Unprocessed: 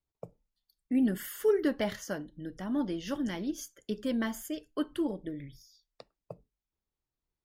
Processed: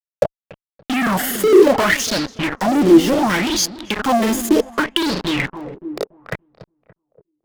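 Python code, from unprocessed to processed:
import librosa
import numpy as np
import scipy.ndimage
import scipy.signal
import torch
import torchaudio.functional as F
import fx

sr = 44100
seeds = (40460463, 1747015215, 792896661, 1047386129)

p1 = fx.granulator(x, sr, seeds[0], grain_ms=100.0, per_s=20.0, spray_ms=27.0, spread_st=0)
p2 = fx.fuzz(p1, sr, gain_db=55.0, gate_db=-47.0)
p3 = p2 + fx.echo_filtered(p2, sr, ms=286, feedback_pct=36, hz=1500.0, wet_db=-12.5, dry=0)
p4 = fx.bell_lfo(p3, sr, hz=0.68, low_hz=320.0, high_hz=4600.0, db=16)
y = F.gain(torch.from_numpy(p4), -5.5).numpy()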